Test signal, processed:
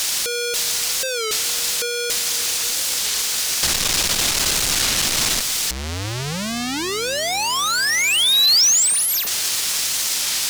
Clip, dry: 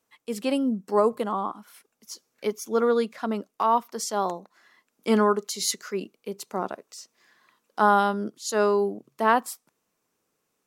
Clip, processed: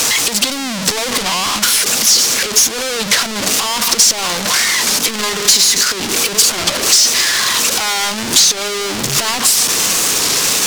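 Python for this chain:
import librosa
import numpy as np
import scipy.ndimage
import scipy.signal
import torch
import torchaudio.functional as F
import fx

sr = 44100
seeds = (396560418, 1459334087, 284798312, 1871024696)

y = np.sign(x) * np.sqrt(np.mean(np.square(x)))
y = fx.peak_eq(y, sr, hz=5400.0, db=14.0, octaves=2.7)
y = fx.echo_wet_lowpass(y, sr, ms=272, feedback_pct=83, hz=2800.0, wet_db=-18.0)
y = fx.transient(y, sr, attack_db=7, sustain_db=-6)
y = fx.record_warp(y, sr, rpm=33.33, depth_cents=160.0)
y = F.gain(torch.from_numpy(y), 4.0).numpy()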